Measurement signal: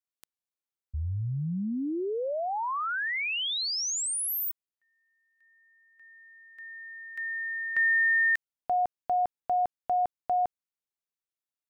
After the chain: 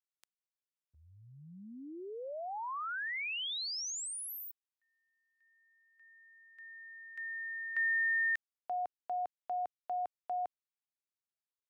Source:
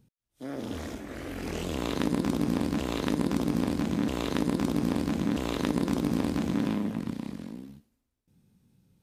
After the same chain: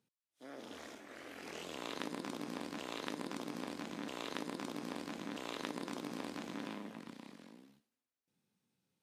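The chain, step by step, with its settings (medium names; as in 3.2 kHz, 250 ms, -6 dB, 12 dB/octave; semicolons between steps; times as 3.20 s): frequency weighting A; trim -8.5 dB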